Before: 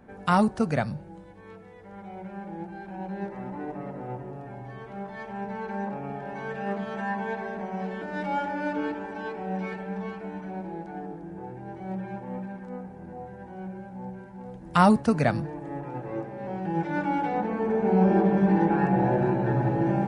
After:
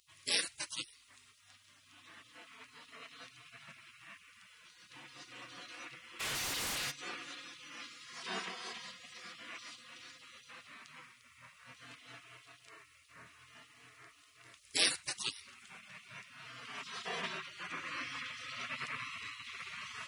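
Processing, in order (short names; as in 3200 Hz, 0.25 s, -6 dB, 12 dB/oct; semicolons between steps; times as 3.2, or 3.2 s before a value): HPF 570 Hz 12 dB/oct; spectral gate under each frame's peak -30 dB weak; 6.19–6.9 sine folder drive 19 dB -> 14 dB, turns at -46.5 dBFS; gain +12 dB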